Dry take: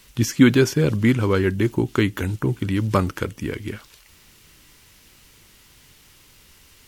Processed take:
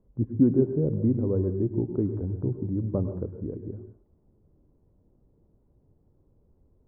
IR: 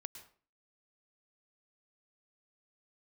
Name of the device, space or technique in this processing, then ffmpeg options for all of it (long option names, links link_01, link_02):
next room: -filter_complex "[0:a]lowpass=frequency=620:width=0.5412,lowpass=frequency=620:width=1.3066[link_01];[1:a]atrim=start_sample=2205[link_02];[link_01][link_02]afir=irnorm=-1:irlink=0,volume=-1.5dB"